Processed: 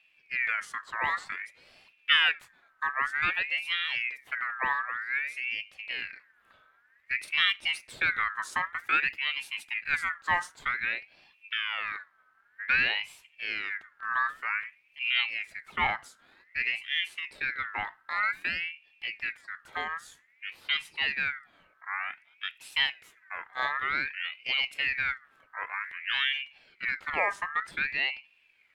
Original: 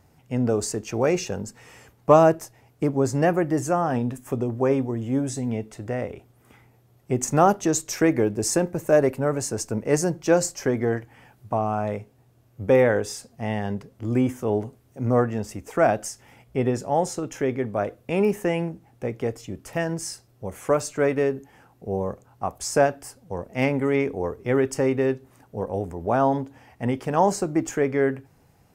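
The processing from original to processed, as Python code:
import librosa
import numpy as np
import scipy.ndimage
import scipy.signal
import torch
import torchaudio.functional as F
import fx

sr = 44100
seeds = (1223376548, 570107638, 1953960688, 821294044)

y = fx.bass_treble(x, sr, bass_db=3, treble_db=-11)
y = fx.ring_lfo(y, sr, carrier_hz=2000.0, swing_pct=30, hz=0.53)
y = y * librosa.db_to_amplitude(-6.0)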